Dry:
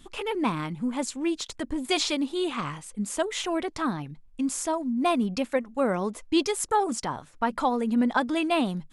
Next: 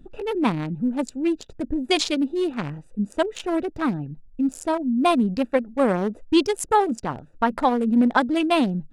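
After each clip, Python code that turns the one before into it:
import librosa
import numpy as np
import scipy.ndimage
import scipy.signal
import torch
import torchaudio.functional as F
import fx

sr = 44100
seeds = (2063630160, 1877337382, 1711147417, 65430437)

y = fx.wiener(x, sr, points=41)
y = y * librosa.db_to_amplitude(6.0)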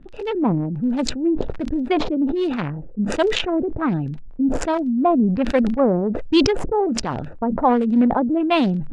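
y = fx.dmg_crackle(x, sr, seeds[0], per_s=19.0, level_db=-36.0)
y = fx.filter_lfo_lowpass(y, sr, shape='sine', hz=1.3, low_hz=470.0, high_hz=5600.0, q=1.0)
y = fx.sustainer(y, sr, db_per_s=40.0)
y = y * librosa.db_to_amplitude(1.5)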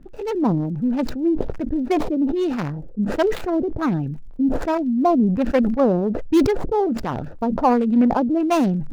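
y = scipy.signal.medfilt(x, 15)
y = fx.dmg_crackle(y, sr, seeds[1], per_s=24.0, level_db=-47.0)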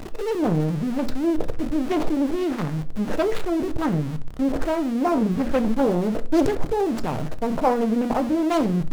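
y = x + 0.5 * 10.0 ** (-25.0 / 20.0) * np.sign(x)
y = fx.room_shoebox(y, sr, seeds[2], volume_m3=200.0, walls='furnished', distance_m=0.51)
y = fx.doppler_dist(y, sr, depth_ms=0.71)
y = y * librosa.db_to_amplitude(-4.5)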